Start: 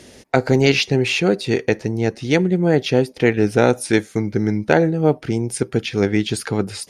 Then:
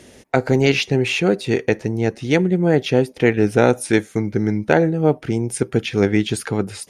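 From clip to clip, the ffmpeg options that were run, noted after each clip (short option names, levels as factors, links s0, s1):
-af "dynaudnorm=f=130:g=13:m=3.76,equalizer=f=4700:w=2.2:g=-5,volume=0.891"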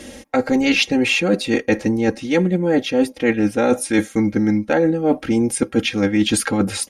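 -af "aecho=1:1:3.7:0.91,areverse,acompressor=threshold=0.1:ratio=6,areverse,volume=2"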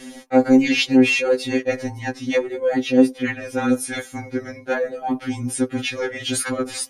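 -af "afftfilt=real='re*2.45*eq(mod(b,6),0)':imag='im*2.45*eq(mod(b,6),0)':win_size=2048:overlap=0.75"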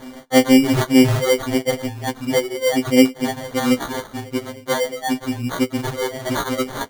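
-af "acrusher=samples=17:mix=1:aa=0.000001,volume=1.19"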